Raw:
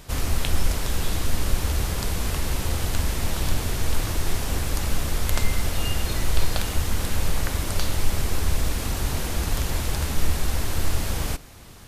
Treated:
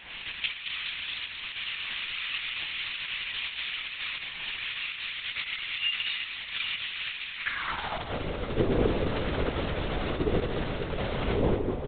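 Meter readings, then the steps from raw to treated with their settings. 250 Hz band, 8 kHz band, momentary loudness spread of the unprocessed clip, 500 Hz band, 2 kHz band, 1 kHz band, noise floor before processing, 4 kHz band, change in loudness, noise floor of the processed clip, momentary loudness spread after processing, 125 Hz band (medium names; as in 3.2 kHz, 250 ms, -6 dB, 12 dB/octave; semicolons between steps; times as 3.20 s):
-1.0 dB, under -40 dB, 1 LU, +2.5 dB, +2.0 dB, -3.5 dB, -35 dBFS, +1.0 dB, -4.0 dB, -40 dBFS, 6 LU, -9.5 dB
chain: wind noise 290 Hz -28 dBFS; in parallel at +2 dB: compressor with a negative ratio -22 dBFS, ratio -0.5; on the sum: saturation -5 dBFS, distortion -25 dB; high-pass sweep 2.5 kHz -> 350 Hz, 7.36–8.21 s; on a send: delay 218 ms -7.5 dB; on the sum: LPC vocoder at 8 kHz whisper; trim -7.5 dB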